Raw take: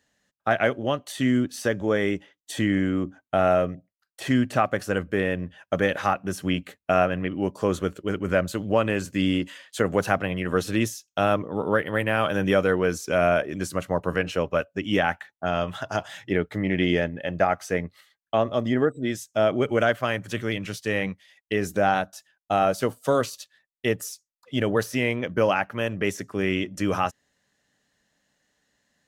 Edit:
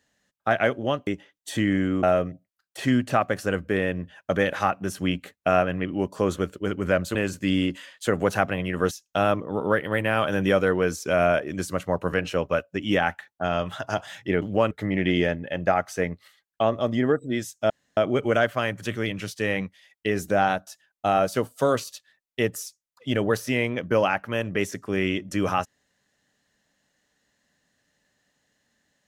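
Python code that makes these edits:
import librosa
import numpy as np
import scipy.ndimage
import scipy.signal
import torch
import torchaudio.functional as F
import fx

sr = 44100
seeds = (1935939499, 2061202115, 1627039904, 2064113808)

y = fx.edit(x, sr, fx.cut(start_s=1.07, length_s=1.02),
    fx.cut(start_s=3.05, length_s=0.41),
    fx.move(start_s=8.58, length_s=0.29, to_s=16.44),
    fx.cut(start_s=10.63, length_s=0.3),
    fx.insert_room_tone(at_s=19.43, length_s=0.27), tone=tone)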